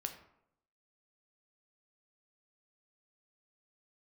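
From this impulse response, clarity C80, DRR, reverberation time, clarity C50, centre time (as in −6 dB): 12.5 dB, 5.0 dB, 0.75 s, 9.5 dB, 14 ms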